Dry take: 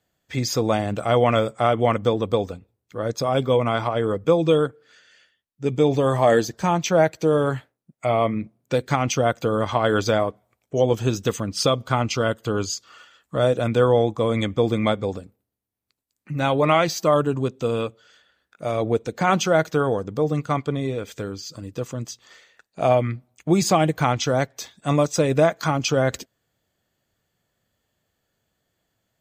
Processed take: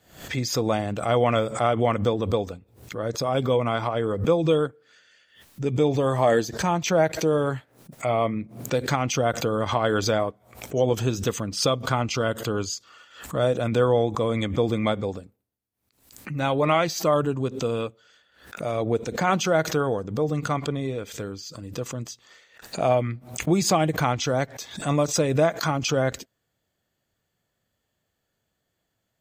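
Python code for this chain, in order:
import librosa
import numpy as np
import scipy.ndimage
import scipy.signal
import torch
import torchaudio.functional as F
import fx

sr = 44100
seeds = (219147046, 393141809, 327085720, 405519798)

y = fx.pre_swell(x, sr, db_per_s=110.0)
y = y * 10.0 ** (-3.0 / 20.0)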